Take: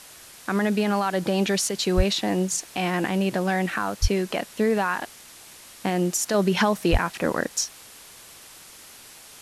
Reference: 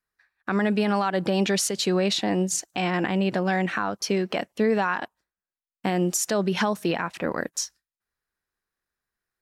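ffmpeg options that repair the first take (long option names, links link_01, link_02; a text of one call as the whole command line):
ffmpeg -i in.wav -filter_complex "[0:a]asplit=3[link_01][link_02][link_03];[link_01]afade=type=out:start_time=1.96:duration=0.02[link_04];[link_02]highpass=frequency=140:width=0.5412,highpass=frequency=140:width=1.3066,afade=type=in:start_time=1.96:duration=0.02,afade=type=out:start_time=2.08:duration=0.02[link_05];[link_03]afade=type=in:start_time=2.08:duration=0.02[link_06];[link_04][link_05][link_06]amix=inputs=3:normalize=0,asplit=3[link_07][link_08][link_09];[link_07]afade=type=out:start_time=4.01:duration=0.02[link_10];[link_08]highpass=frequency=140:width=0.5412,highpass=frequency=140:width=1.3066,afade=type=in:start_time=4.01:duration=0.02,afade=type=out:start_time=4.13:duration=0.02[link_11];[link_09]afade=type=in:start_time=4.13:duration=0.02[link_12];[link_10][link_11][link_12]amix=inputs=3:normalize=0,asplit=3[link_13][link_14][link_15];[link_13]afade=type=out:start_time=6.91:duration=0.02[link_16];[link_14]highpass=frequency=140:width=0.5412,highpass=frequency=140:width=1.3066,afade=type=in:start_time=6.91:duration=0.02,afade=type=out:start_time=7.03:duration=0.02[link_17];[link_15]afade=type=in:start_time=7.03:duration=0.02[link_18];[link_16][link_17][link_18]amix=inputs=3:normalize=0,afwtdn=0.0063,asetnsamples=nb_out_samples=441:pad=0,asendcmd='6.34 volume volume -3dB',volume=0dB" out.wav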